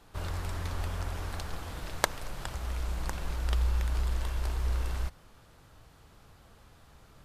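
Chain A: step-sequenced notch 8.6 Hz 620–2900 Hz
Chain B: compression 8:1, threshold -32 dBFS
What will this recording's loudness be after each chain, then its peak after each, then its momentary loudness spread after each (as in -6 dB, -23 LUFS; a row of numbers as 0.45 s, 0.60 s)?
-35.0 LUFS, -39.5 LUFS; -4.5 dBFS, -9.0 dBFS; 10 LU, 20 LU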